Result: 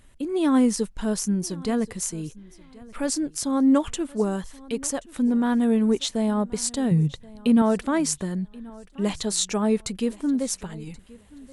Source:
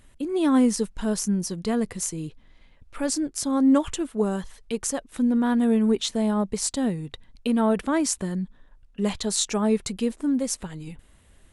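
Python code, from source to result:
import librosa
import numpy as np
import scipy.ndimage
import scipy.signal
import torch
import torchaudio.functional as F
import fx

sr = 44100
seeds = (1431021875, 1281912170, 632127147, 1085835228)

y = fx.peak_eq(x, sr, hz=150.0, db=14.0, octaves=0.95, at=(6.91, 7.62))
y = fx.echo_feedback(y, sr, ms=1079, feedback_pct=24, wet_db=-22.0)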